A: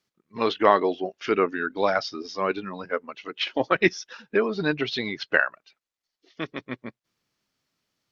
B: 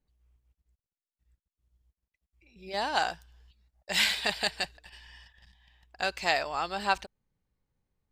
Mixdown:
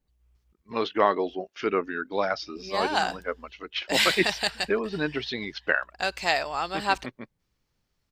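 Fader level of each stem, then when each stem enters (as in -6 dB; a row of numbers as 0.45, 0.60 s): -3.5, +2.5 dB; 0.35, 0.00 s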